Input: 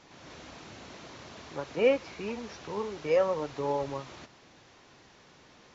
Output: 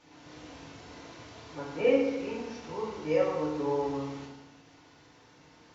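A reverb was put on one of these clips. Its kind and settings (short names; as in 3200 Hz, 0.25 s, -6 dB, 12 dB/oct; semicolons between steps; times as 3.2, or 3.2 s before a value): FDN reverb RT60 1.1 s, low-frequency decay 1.2×, high-frequency decay 0.75×, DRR -5 dB; gain -7.5 dB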